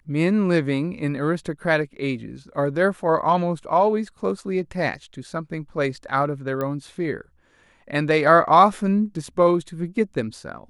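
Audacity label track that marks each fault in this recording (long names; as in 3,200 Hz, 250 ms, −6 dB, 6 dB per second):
6.610000	6.610000	click −15 dBFS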